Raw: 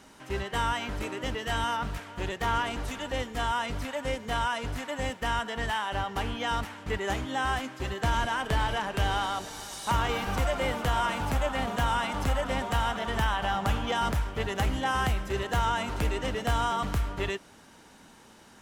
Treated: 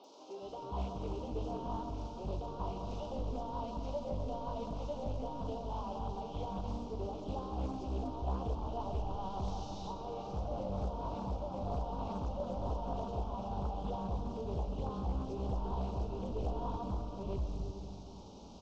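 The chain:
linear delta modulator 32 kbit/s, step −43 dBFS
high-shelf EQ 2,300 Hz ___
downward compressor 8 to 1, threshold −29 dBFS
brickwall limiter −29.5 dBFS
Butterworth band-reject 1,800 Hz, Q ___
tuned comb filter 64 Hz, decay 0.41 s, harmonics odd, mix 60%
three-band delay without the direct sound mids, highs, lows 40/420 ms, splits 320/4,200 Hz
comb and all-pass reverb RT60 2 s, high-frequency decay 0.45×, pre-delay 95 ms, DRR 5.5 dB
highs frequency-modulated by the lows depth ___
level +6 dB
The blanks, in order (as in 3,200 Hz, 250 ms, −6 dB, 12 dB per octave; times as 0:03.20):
−6.5 dB, 0.63, 0.45 ms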